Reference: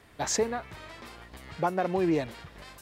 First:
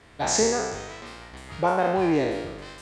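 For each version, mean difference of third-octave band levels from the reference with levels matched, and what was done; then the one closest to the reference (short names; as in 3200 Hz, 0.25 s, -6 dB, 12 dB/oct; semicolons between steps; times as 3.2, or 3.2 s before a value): 4.5 dB: spectral trails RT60 1.17 s; LPF 8900 Hz 24 dB/oct; gain +2 dB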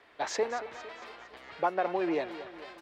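6.5 dB: three-band isolator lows -20 dB, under 330 Hz, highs -20 dB, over 4700 Hz; feedback echo 0.228 s, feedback 54%, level -14 dB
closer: first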